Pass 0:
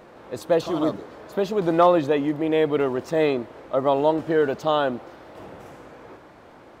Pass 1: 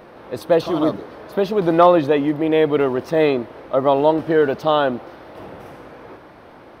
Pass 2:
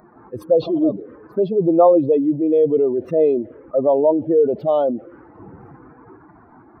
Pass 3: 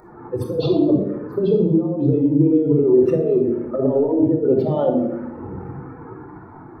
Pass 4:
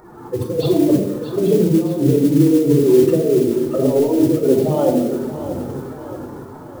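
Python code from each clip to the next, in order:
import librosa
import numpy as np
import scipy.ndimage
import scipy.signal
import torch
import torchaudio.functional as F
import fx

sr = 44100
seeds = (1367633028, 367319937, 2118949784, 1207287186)

y1 = fx.peak_eq(x, sr, hz=7200.0, db=-13.5, octaves=0.33)
y1 = F.gain(torch.from_numpy(y1), 4.5).numpy()
y2 = fx.spec_expand(y1, sr, power=2.0)
y2 = fx.env_phaser(y2, sr, low_hz=510.0, high_hz=1600.0, full_db=-14.5)
y2 = F.gain(torch.from_numpy(y2), 2.0).numpy()
y3 = fx.over_compress(y2, sr, threshold_db=-19.0, ratio=-0.5)
y3 = fx.room_shoebox(y3, sr, seeds[0], volume_m3=2700.0, walls='furnished', distance_m=4.3)
y3 = F.gain(torch.from_numpy(y3), -2.0).numpy()
y4 = fx.mod_noise(y3, sr, seeds[1], snr_db=23)
y4 = fx.echo_feedback(y4, sr, ms=631, feedback_pct=47, wet_db=-11.5)
y4 = F.gain(torch.from_numpy(y4), 2.0).numpy()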